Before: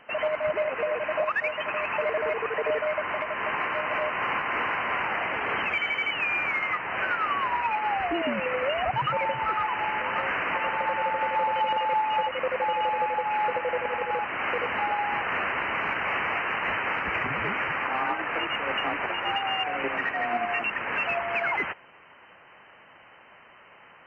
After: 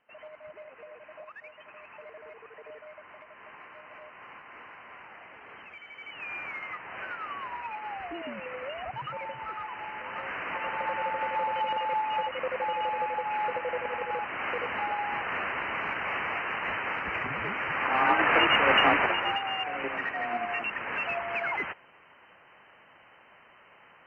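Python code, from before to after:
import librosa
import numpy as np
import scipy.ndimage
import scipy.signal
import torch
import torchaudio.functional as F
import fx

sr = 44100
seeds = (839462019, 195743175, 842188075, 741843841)

y = fx.gain(x, sr, db=fx.line((5.87, -20.0), (6.31, -10.5), (9.95, -10.5), (10.86, -4.0), (17.61, -4.0), (18.22, 7.0), (18.92, 7.0), (19.44, -4.0)))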